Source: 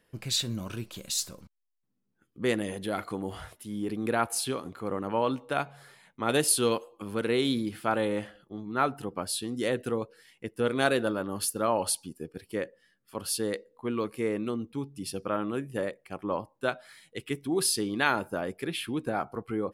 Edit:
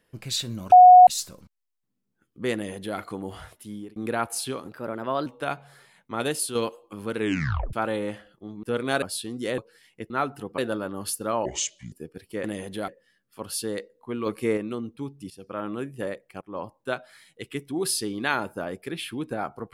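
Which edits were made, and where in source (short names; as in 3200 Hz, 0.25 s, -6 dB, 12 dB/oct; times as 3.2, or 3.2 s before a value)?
0.72–1.07 bleep 729 Hz -6.5 dBFS
2.54–2.98 copy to 12.64
3.7–3.96 fade out
4.67–5.35 speed 115%
6.21–6.64 fade out, to -7 dB
7.27 tape stop 0.55 s
8.72–9.2 swap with 10.54–10.93
9.76–10.02 cut
11.8–12.12 speed 68%
14.02–14.33 gain +5 dB
15.06–15.46 fade in, from -16.5 dB
16.17–16.42 fade in, from -20 dB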